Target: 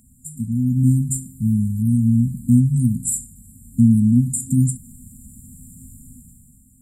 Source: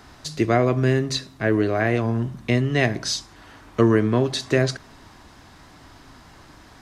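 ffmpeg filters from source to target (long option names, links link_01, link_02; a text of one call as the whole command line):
ffmpeg -i in.wav -af "afftfilt=real='re*(1-between(b*sr/4096,260,7100))':imag='im*(1-between(b*sr/4096,260,7100))':win_size=4096:overlap=0.75,dynaudnorm=framelen=110:gausssize=13:maxgain=12dB,bass=frequency=250:gain=-7,treble=frequency=4000:gain=5,volume=3dB" out.wav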